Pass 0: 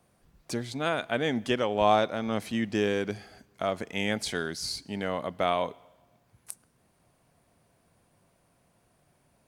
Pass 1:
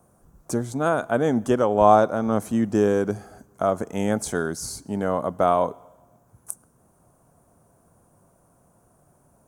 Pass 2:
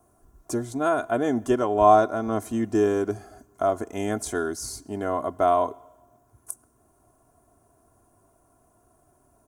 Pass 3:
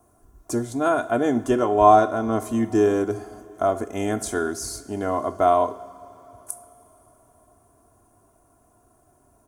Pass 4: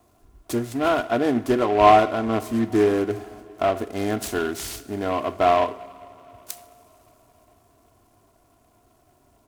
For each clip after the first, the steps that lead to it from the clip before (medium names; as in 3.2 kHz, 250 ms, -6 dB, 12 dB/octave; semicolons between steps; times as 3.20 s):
high-order bell 3 kHz -16 dB; trim +7.5 dB
comb 2.9 ms, depth 69%; trim -3.5 dB
two-slope reverb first 0.43 s, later 4.5 s, from -18 dB, DRR 10.5 dB; trim +2 dB
delay time shaken by noise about 1.5 kHz, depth 0.039 ms